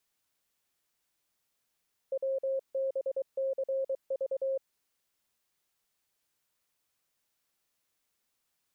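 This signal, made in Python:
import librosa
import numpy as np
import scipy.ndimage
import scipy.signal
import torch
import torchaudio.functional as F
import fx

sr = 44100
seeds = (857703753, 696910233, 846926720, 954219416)

y = fx.morse(sr, text='WBCV', wpm=23, hz=536.0, level_db=-28.0)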